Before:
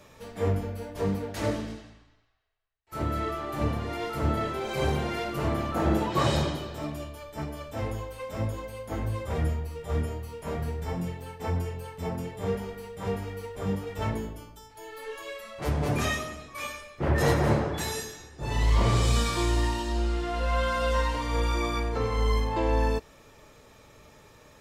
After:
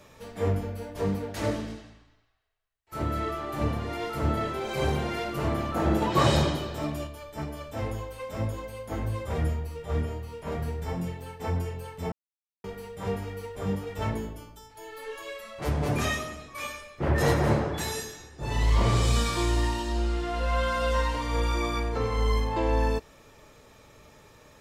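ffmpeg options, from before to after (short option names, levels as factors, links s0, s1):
-filter_complex "[0:a]asettb=1/sr,asplit=3[s0][s1][s2];[s0]atrim=end=9.774[s3];[s1]atrim=start=9.77:end=10.52,asetpts=PTS-STARTPTS,afade=t=in:d=0.004:c=qsin,afade=t=out:st=0.746:d=0.004:c=qsin,acrossover=split=5200[s4][s5];[s5]acompressor=threshold=0.00126:ratio=4:attack=1:release=60[s6];[s4][s6]amix=inputs=2:normalize=0[s7];[s2]atrim=start=10.516[s8];[s3][s7]acrossfade=d=0.004:c1=hsin:c2=qsin[s9];[s9][s8]acrossfade=d=0.004:c1=qsin:c2=hsin,asplit=5[s10][s11][s12][s13][s14];[s10]atrim=end=6.022[s15];[s11]atrim=start=6.018:end=7.072,asetpts=PTS-STARTPTS,volume=1.41[s16];[s12]atrim=start=7.068:end=12.12,asetpts=PTS-STARTPTS,afade=t=out:st=5.048:d=0.004:c=hsin[s17];[s13]atrim=start=12.12:end=12.64,asetpts=PTS-STARTPTS,volume=0[s18];[s14]atrim=start=12.64,asetpts=PTS-STARTPTS,afade=t=in:d=0.004:c=hsin[s19];[s15][s16]acrossfade=d=0.004:c1=hsin:c2=hsin[s20];[s17][s18][s19]concat=n=3:v=0:a=1[s21];[s20][s21]acrossfade=d=0.004:c1=hsin:c2=hsin"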